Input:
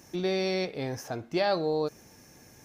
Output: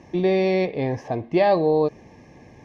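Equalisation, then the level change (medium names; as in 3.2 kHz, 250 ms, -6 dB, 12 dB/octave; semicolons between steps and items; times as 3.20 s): Butterworth band-stop 1.4 kHz, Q 2.8; low-pass 2.2 kHz 12 dB/octave; +9.0 dB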